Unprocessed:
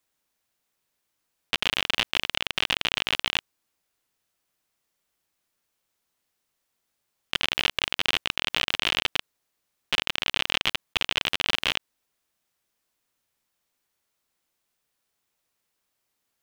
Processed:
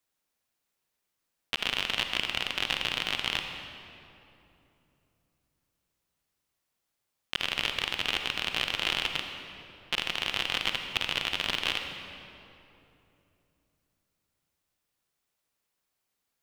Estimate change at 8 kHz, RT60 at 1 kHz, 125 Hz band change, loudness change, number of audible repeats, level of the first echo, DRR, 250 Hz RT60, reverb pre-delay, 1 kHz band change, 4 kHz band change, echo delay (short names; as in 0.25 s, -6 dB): -4.0 dB, 2.7 s, -2.5 dB, -3.5 dB, none, none, 5.0 dB, 3.8 s, 39 ms, -3.0 dB, -3.5 dB, none